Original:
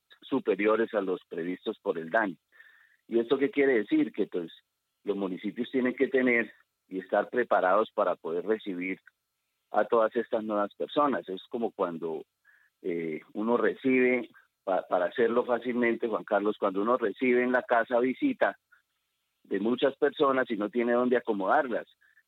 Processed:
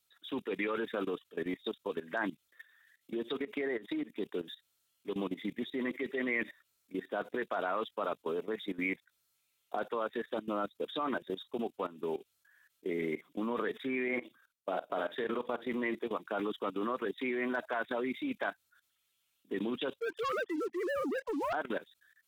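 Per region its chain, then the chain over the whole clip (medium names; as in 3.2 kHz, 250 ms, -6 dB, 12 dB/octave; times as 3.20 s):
3.39–4.16 s: high-pass 84 Hz + peaking EQ 3.3 kHz -3.5 dB 1 oct + compression 20:1, threshold -29 dBFS
14.08–15.67 s: level held to a coarse grid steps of 10 dB + doubling 49 ms -8 dB
20.00–21.53 s: formants replaced by sine waves + low-pass 1.8 kHz + waveshaping leveller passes 2
whole clip: dynamic bell 570 Hz, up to -4 dB, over -36 dBFS, Q 3.4; level held to a coarse grid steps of 17 dB; treble shelf 3.1 kHz +10 dB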